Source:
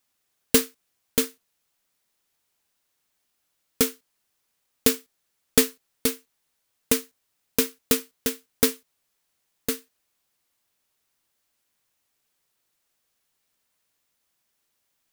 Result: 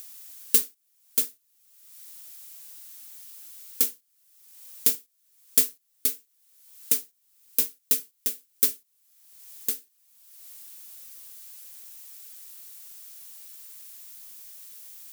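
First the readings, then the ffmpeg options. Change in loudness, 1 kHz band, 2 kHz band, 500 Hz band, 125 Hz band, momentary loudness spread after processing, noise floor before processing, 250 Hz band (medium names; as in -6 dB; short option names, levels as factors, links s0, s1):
0.0 dB, under -10 dB, -11.0 dB, -17.0 dB, under -15 dB, 20 LU, -76 dBFS, -17.0 dB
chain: -af "acompressor=mode=upward:threshold=0.0708:ratio=2.5,crystalizer=i=5.5:c=0,volume=0.133"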